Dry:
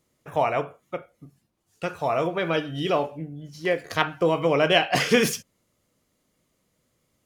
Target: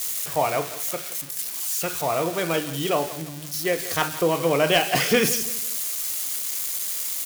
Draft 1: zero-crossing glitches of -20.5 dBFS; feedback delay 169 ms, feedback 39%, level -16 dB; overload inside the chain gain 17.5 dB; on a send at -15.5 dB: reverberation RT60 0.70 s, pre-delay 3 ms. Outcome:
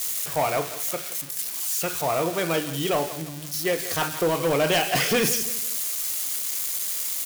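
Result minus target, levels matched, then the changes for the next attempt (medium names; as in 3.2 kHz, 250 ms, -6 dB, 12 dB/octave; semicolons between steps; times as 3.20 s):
overload inside the chain: distortion +12 dB
change: overload inside the chain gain 10.5 dB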